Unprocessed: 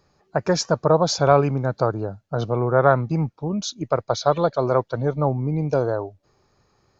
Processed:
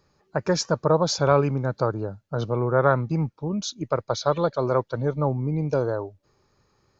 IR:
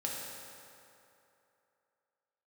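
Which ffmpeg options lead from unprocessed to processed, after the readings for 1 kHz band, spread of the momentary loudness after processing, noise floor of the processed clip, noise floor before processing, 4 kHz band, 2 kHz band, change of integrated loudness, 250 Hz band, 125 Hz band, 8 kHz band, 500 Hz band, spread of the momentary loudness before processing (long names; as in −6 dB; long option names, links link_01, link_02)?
−4.0 dB, 9 LU, −68 dBFS, −66 dBFS, −2.0 dB, −2.0 dB, −2.5 dB, −2.0 dB, −2.0 dB, can't be measured, −3.0 dB, 10 LU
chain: -af "equalizer=frequency=710:width_type=o:width=0.22:gain=-7.5,volume=-2dB"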